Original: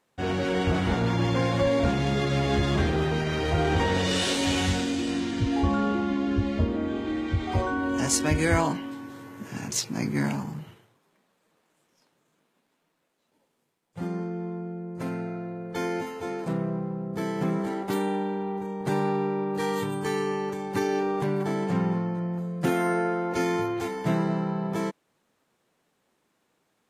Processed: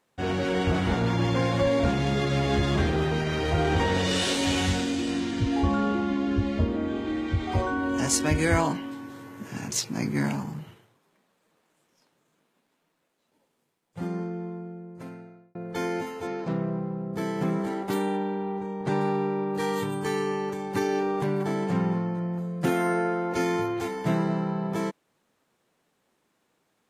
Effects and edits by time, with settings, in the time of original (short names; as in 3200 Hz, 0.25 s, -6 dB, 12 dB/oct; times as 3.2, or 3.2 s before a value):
14.22–15.55 fade out
16.27–17.13 LPF 5900 Hz 24 dB/oct
18.17–19.01 Bessel low-pass 5600 Hz